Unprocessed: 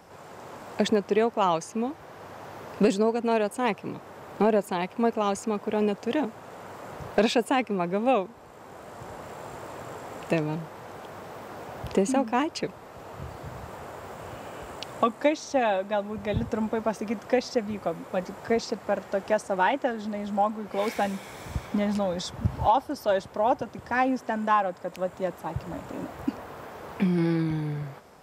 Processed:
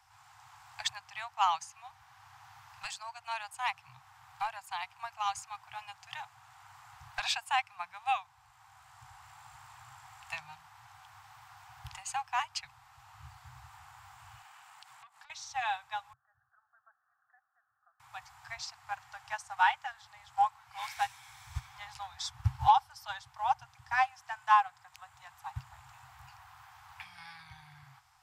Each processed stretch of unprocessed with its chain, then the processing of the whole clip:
0:14.42–0:15.30: high-pass filter 180 Hz 24 dB per octave + downward compressor 16 to 1, threshold −35 dBFS + saturating transformer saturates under 2,500 Hz
0:16.13–0:18.00: Butterworth low-pass 1,800 Hz 96 dB per octave + first difference + phaser with its sweep stopped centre 1,400 Hz, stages 8
whole clip: Chebyshev band-stop filter 130–770 Hz, order 5; parametric band 4,800 Hz +4.5 dB 2.6 octaves; expander for the loud parts 1.5 to 1, over −40 dBFS

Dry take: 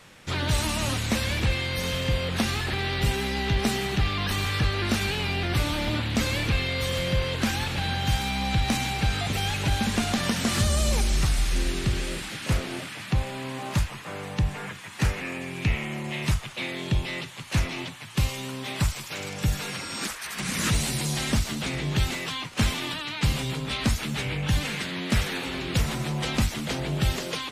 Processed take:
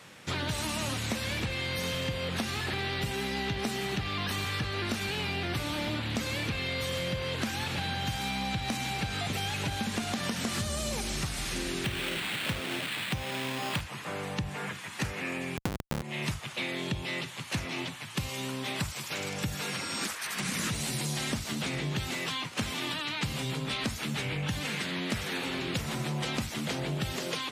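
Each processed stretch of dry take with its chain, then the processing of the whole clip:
0:11.84–0:13.81: sample-rate reduction 5,900 Hz + parametric band 2,900 Hz +7 dB 1.7 octaves
0:15.57–0:16.02: inverse Chebyshev low-pass filter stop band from 700 Hz + low-shelf EQ 220 Hz +11.5 dB + comparator with hysteresis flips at −23 dBFS
whole clip: high-pass filter 100 Hz 12 dB per octave; downward compressor, threshold −29 dBFS

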